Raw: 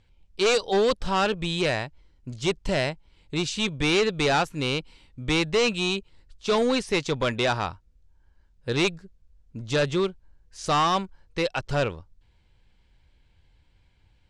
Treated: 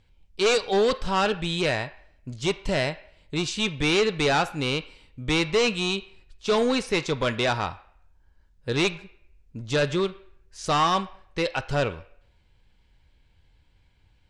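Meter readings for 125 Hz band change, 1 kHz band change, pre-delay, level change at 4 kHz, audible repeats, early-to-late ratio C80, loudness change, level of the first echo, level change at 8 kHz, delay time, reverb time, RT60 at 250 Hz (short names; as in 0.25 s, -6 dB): 0.0 dB, +0.5 dB, 5 ms, +0.5 dB, none, 18.5 dB, 0.0 dB, none, 0.0 dB, none, 0.65 s, 0.75 s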